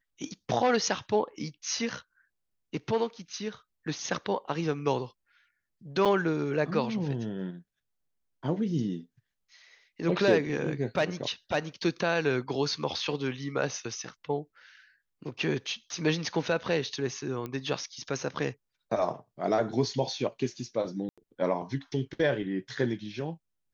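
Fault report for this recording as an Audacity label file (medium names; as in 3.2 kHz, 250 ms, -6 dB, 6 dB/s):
6.050000	6.060000	dropout 6.3 ms
17.460000	17.460000	pop -23 dBFS
21.090000	21.180000	dropout 86 ms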